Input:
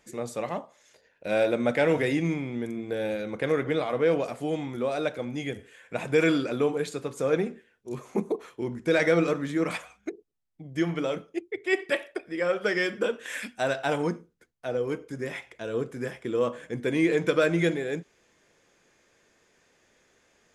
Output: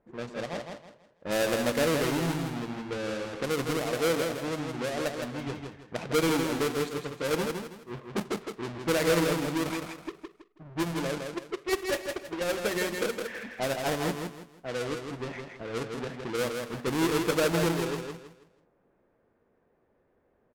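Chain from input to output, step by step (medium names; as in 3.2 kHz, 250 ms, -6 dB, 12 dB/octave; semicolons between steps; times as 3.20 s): square wave that keeps the level; level-controlled noise filter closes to 980 Hz, open at -19.5 dBFS; feedback delay 162 ms, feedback 31%, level -5 dB; trim -8 dB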